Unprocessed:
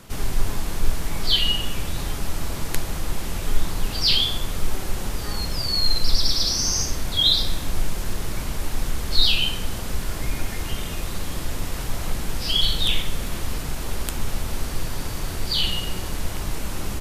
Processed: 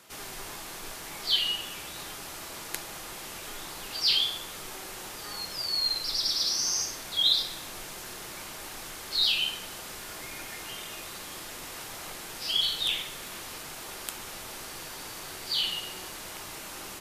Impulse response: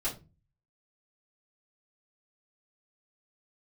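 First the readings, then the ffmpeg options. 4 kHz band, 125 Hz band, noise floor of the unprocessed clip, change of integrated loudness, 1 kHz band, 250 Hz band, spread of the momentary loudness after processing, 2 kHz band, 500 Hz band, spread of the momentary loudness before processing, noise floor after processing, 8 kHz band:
−5.0 dB, −22.5 dB, −30 dBFS, −5.5 dB, −6.5 dB, −14.5 dB, 15 LU, −5.0 dB, −9.5 dB, 12 LU, −42 dBFS, −4.5 dB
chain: -filter_complex "[0:a]highpass=frequency=760:poles=1,asplit=2[link_01][link_02];[1:a]atrim=start_sample=2205[link_03];[link_02][link_03]afir=irnorm=-1:irlink=0,volume=-14.5dB[link_04];[link_01][link_04]amix=inputs=2:normalize=0,volume=-5.5dB"

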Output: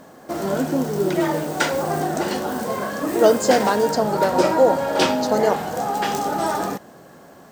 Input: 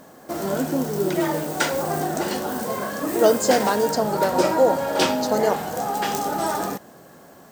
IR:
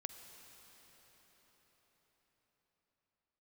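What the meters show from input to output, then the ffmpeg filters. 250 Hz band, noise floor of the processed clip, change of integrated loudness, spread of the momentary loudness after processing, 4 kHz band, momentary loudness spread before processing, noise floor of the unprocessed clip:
+2.0 dB, −46 dBFS, +1.5 dB, 9 LU, +0.5 dB, 8 LU, −47 dBFS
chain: -af "highshelf=frequency=8200:gain=-7.5,volume=2dB"

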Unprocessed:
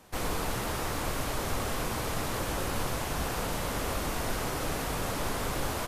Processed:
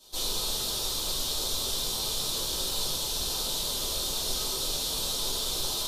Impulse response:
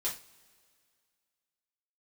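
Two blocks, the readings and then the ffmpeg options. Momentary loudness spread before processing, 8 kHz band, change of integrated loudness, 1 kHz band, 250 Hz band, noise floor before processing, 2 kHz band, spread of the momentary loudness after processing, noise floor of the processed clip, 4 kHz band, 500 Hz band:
0 LU, +8.0 dB, +4.0 dB, −7.5 dB, −8.0 dB, −34 dBFS, −9.0 dB, 0 LU, −32 dBFS, +11.5 dB, −5.0 dB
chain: -filter_complex "[0:a]highshelf=frequency=2800:width_type=q:width=3:gain=11.5[link_01];[1:a]atrim=start_sample=2205[link_02];[link_01][link_02]afir=irnorm=-1:irlink=0,volume=-8.5dB"

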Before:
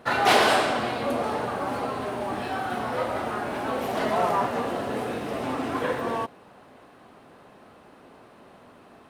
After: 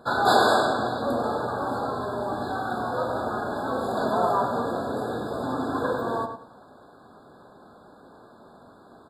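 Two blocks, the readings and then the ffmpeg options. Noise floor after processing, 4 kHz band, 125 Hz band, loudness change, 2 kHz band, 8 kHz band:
−52 dBFS, −3.0 dB, +1.5 dB, 0.0 dB, −2.0 dB, −4.0 dB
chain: -filter_complex "[0:a]asplit=2[link_01][link_02];[link_02]adelay=99,lowpass=frequency=4100:poles=1,volume=-7dB,asplit=2[link_03][link_04];[link_04]adelay=99,lowpass=frequency=4100:poles=1,volume=0.23,asplit=2[link_05][link_06];[link_06]adelay=99,lowpass=frequency=4100:poles=1,volume=0.23[link_07];[link_01][link_03][link_05][link_07]amix=inputs=4:normalize=0,afftfilt=real='re*eq(mod(floor(b*sr/1024/1700),2),0)':imag='im*eq(mod(floor(b*sr/1024/1700),2),0)':win_size=1024:overlap=0.75"

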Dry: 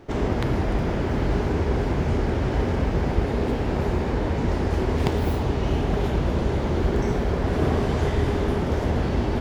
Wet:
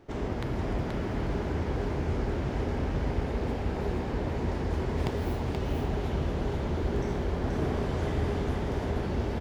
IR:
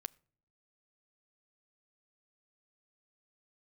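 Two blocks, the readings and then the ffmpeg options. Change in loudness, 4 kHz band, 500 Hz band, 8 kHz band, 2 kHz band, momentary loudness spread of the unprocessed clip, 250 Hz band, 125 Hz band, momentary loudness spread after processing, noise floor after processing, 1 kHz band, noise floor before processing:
−7.0 dB, −7.0 dB, −7.0 dB, can't be measured, −7.0 dB, 1 LU, −7.0 dB, −7.0 dB, 2 LU, −33 dBFS, −7.0 dB, −26 dBFS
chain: -af "aecho=1:1:479:0.631,volume=-8.5dB"

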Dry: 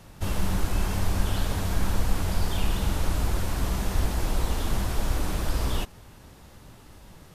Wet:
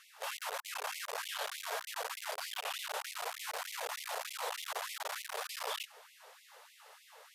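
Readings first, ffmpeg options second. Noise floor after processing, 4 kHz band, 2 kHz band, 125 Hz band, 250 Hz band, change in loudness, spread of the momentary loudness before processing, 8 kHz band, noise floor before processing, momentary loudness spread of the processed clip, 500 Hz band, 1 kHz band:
−62 dBFS, −3.5 dB, −3.0 dB, below −40 dB, below −40 dB, −10.5 dB, 1 LU, −5.5 dB, −50 dBFS, 18 LU, −8.0 dB, −4.5 dB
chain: -af "bass=frequency=250:gain=8,treble=frequency=4000:gain=-4,aeval=exprs='clip(val(0),-1,0.0708)':channel_layout=same,afftfilt=real='re*gte(b*sr/1024,400*pow(2000/400,0.5+0.5*sin(2*PI*3.3*pts/sr)))':imag='im*gte(b*sr/1024,400*pow(2000/400,0.5+0.5*sin(2*PI*3.3*pts/sr)))':win_size=1024:overlap=0.75"

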